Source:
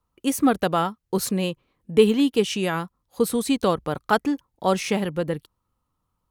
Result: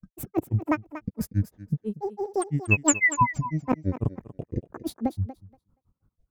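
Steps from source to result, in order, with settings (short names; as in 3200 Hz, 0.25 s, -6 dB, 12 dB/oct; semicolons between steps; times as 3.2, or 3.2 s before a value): EQ curve 180 Hz 0 dB, 2800 Hz -24 dB, 12000 Hz -19 dB; in parallel at +2 dB: limiter -19.5 dBFS, peak gain reduction 8 dB; on the sum: negative-ratio compressor -24 dBFS, ratio -1; painted sound fall, 2.68–3.28, 1700–4400 Hz -19 dBFS; grains 0.109 s, grains 6/s, spray 0.234 s, pitch spread up and down by 12 st; on a send: thinning echo 0.237 s, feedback 15%, high-pass 260 Hz, level -12 dB; on the sum: gain +2.5 dB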